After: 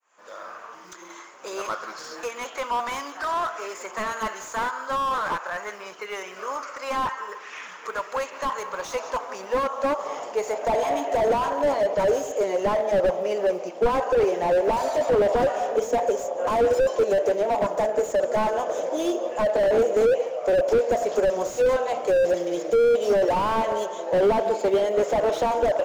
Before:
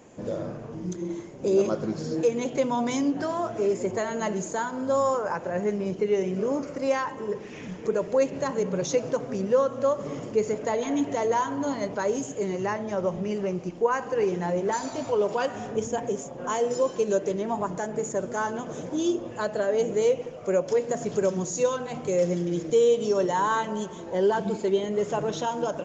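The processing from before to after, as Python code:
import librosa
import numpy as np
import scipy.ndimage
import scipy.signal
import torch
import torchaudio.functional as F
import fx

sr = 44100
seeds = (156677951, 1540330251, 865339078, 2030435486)

p1 = fx.fade_in_head(x, sr, length_s=0.59)
p2 = fx.quant_float(p1, sr, bits=6)
p3 = fx.filter_sweep_highpass(p2, sr, from_hz=1200.0, to_hz=590.0, start_s=8.13, end_s=11.79, q=3.0)
p4 = p3 + fx.echo_single(p3, sr, ms=179, db=-21.5, dry=0)
p5 = fx.slew_limit(p4, sr, full_power_hz=41.0)
y = F.gain(torch.from_numpy(p5), 5.0).numpy()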